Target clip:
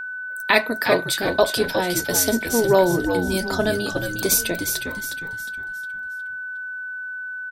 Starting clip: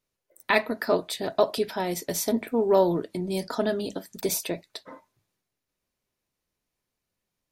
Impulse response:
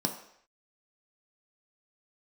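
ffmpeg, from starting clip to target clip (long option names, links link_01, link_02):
-filter_complex "[0:a]highshelf=frequency=3000:gain=7.5,asplit=2[link_01][link_02];[link_02]asplit=5[link_03][link_04][link_05][link_06][link_07];[link_03]adelay=360,afreqshift=-91,volume=-7dB[link_08];[link_04]adelay=720,afreqshift=-182,volume=-15dB[link_09];[link_05]adelay=1080,afreqshift=-273,volume=-22.9dB[link_10];[link_06]adelay=1440,afreqshift=-364,volume=-30.9dB[link_11];[link_07]adelay=1800,afreqshift=-455,volume=-38.8dB[link_12];[link_08][link_09][link_10][link_11][link_12]amix=inputs=5:normalize=0[link_13];[link_01][link_13]amix=inputs=2:normalize=0,aeval=exprs='val(0)+0.0251*sin(2*PI*1500*n/s)':channel_layout=same,volume=3.5dB"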